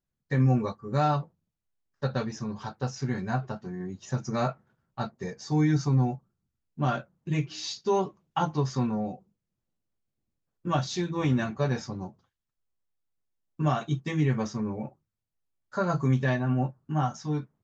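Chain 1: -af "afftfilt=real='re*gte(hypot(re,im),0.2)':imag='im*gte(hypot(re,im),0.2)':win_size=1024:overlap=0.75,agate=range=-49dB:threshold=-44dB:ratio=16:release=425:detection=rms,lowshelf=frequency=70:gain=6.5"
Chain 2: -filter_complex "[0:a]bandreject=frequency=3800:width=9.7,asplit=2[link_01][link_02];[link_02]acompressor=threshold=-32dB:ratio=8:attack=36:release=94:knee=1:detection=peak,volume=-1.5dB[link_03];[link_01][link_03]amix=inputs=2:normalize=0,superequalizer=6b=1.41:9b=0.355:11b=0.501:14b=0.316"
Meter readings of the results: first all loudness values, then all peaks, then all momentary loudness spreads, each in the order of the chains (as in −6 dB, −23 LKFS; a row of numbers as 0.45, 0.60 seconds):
−29.0, −26.0 LKFS; −13.0, −11.0 dBFS; 16, 11 LU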